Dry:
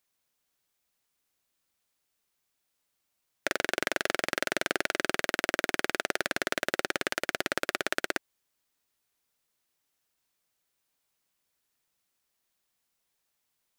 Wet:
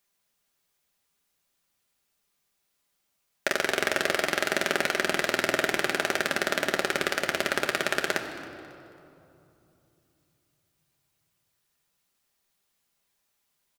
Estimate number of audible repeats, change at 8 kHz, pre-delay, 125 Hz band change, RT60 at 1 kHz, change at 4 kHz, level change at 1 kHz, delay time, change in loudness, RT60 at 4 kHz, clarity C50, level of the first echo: 2, +3.5 dB, 5 ms, +6.0 dB, 2.8 s, +4.0 dB, +4.0 dB, 273 ms, +4.0 dB, 1.8 s, 7.5 dB, -19.5 dB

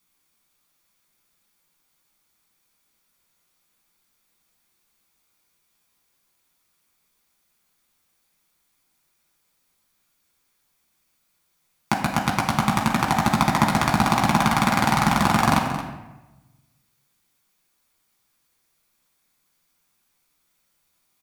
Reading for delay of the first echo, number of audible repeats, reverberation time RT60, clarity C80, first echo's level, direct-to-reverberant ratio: 224 ms, 1, 1.1 s, 5.5 dB, -12.0 dB, -3.0 dB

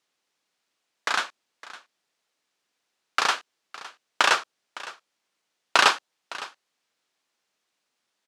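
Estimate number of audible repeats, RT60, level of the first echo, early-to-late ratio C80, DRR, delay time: 1, no reverb, -18.0 dB, no reverb, no reverb, 560 ms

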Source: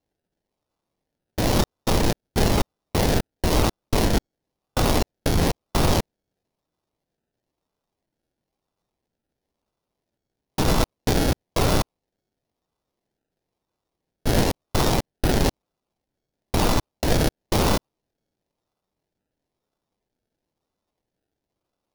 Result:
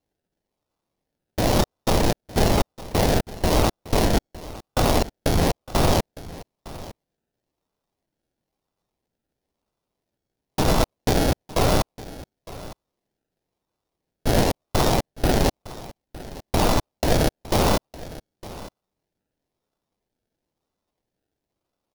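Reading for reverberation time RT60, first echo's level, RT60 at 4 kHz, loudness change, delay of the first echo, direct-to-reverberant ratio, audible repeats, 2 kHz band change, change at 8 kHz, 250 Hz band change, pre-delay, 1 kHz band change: no reverb, -18.0 dB, no reverb, +1.0 dB, 909 ms, no reverb, 1, 0.0 dB, 0.0 dB, +0.5 dB, no reverb, +2.0 dB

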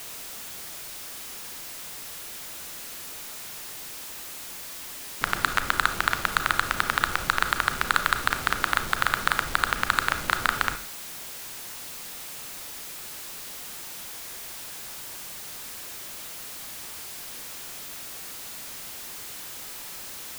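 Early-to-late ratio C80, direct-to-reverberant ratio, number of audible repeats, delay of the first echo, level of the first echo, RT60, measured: 16.5 dB, 9.5 dB, no echo, no echo, no echo, 0.45 s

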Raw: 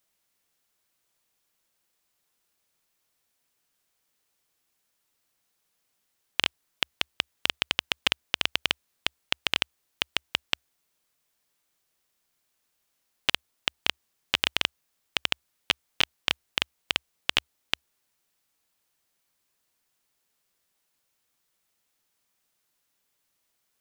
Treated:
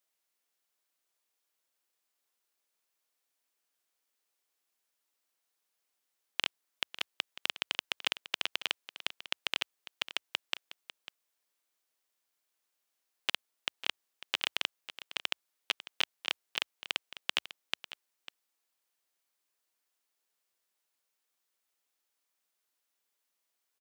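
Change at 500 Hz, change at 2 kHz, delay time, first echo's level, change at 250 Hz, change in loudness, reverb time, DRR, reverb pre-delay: -7.5 dB, -7.0 dB, 548 ms, -14.5 dB, -11.5 dB, -7.0 dB, no reverb, no reverb, no reverb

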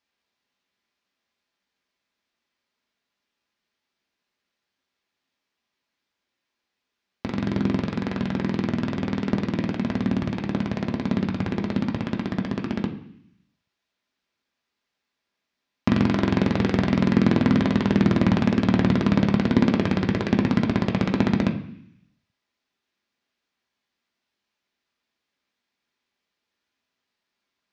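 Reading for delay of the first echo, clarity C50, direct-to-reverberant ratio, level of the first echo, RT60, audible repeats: no echo, 10.5 dB, 1.0 dB, no echo, 0.65 s, no echo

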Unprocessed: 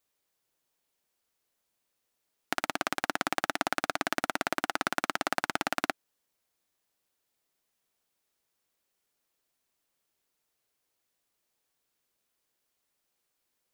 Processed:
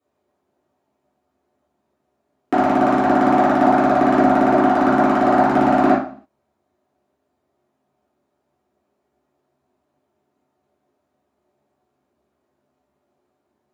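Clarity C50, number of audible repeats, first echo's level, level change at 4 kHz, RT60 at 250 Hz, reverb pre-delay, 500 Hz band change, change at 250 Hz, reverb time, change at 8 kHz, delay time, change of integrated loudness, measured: 6.0 dB, no echo, no echo, -2.0 dB, 0.60 s, 3 ms, +20.0 dB, +23.5 dB, 0.50 s, no reading, no echo, +16.0 dB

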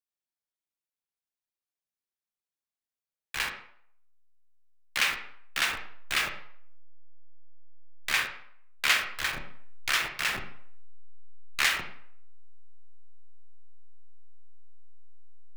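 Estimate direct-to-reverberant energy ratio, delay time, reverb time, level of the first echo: 4.5 dB, no echo, 0.60 s, no echo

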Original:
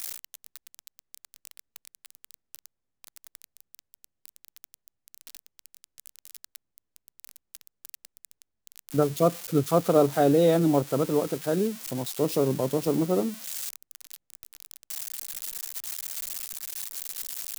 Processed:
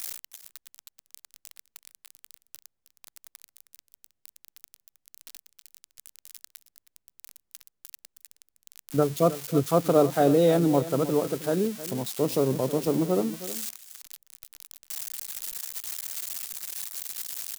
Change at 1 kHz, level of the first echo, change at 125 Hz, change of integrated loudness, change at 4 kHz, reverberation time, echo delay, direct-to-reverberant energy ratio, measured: 0.0 dB, -14.5 dB, 0.0 dB, 0.0 dB, 0.0 dB, no reverb, 316 ms, no reverb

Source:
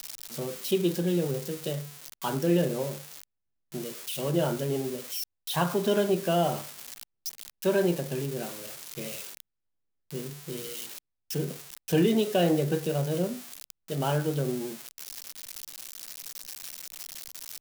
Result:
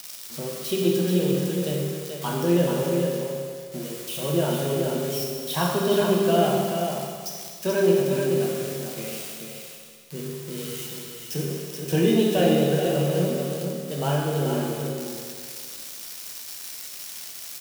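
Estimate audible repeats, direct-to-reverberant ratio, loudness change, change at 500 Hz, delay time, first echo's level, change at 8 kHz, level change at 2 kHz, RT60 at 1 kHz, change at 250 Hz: 1, -2.5 dB, +4.5 dB, +5.5 dB, 433 ms, -6.0 dB, +4.5 dB, +4.5 dB, 2.0 s, +5.0 dB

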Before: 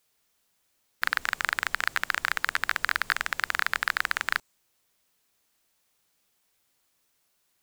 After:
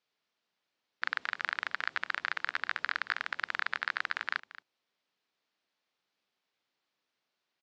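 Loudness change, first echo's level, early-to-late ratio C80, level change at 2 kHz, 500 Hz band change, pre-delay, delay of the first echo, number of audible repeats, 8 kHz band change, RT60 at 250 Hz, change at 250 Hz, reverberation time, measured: -6.5 dB, -16.5 dB, no reverb, -6.5 dB, -6.5 dB, no reverb, 224 ms, 1, under -20 dB, no reverb, -7.5 dB, no reverb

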